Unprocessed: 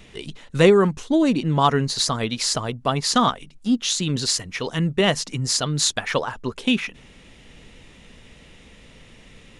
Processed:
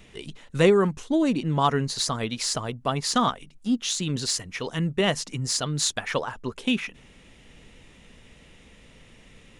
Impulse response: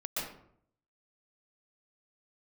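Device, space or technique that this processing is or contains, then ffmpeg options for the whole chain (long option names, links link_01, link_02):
exciter from parts: -filter_complex "[0:a]asplit=2[link_01][link_02];[link_02]highpass=frequency=3900:width=0.5412,highpass=frequency=3900:width=1.3066,asoftclip=type=tanh:threshold=-20.5dB,volume=-12dB[link_03];[link_01][link_03]amix=inputs=2:normalize=0,volume=-4dB"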